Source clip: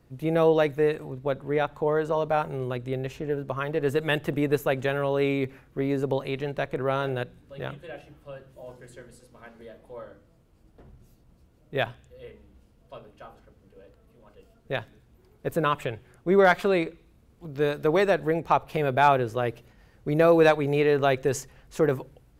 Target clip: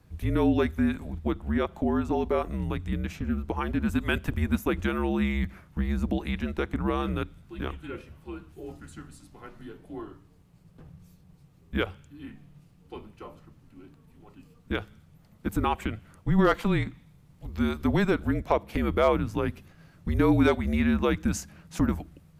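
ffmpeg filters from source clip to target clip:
-filter_complex "[0:a]afreqshift=-210,asplit=2[s0][s1];[s1]acompressor=threshold=0.0355:ratio=6,volume=1.33[s2];[s0][s2]amix=inputs=2:normalize=0,volume=0.562"

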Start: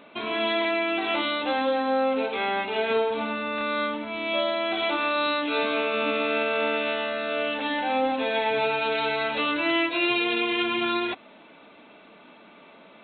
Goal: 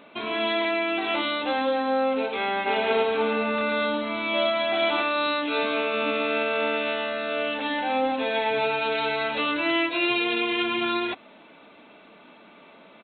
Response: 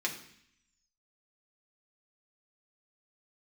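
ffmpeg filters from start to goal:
-filter_complex "[0:a]asplit=3[s0][s1][s2];[s0]afade=t=out:st=2.65:d=0.02[s3];[s1]aecho=1:1:110|242|400.4|590.5|818.6:0.631|0.398|0.251|0.158|0.1,afade=t=in:st=2.65:d=0.02,afade=t=out:st=5.01:d=0.02[s4];[s2]afade=t=in:st=5.01:d=0.02[s5];[s3][s4][s5]amix=inputs=3:normalize=0"

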